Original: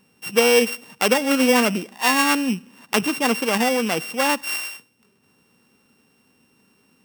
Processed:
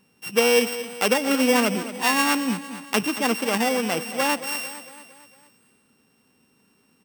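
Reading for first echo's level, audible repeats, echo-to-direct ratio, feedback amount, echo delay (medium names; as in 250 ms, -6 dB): -13.0 dB, 4, -11.5 dB, 53%, 227 ms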